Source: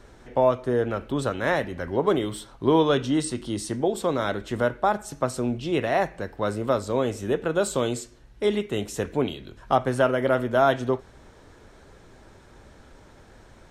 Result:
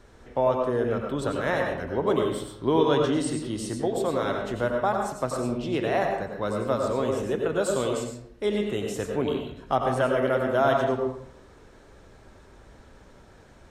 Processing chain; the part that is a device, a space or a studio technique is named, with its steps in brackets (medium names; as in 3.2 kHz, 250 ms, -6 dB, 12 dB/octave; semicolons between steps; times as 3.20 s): bathroom (reverberation RT60 0.70 s, pre-delay 87 ms, DRR 1.5 dB); trim -3.5 dB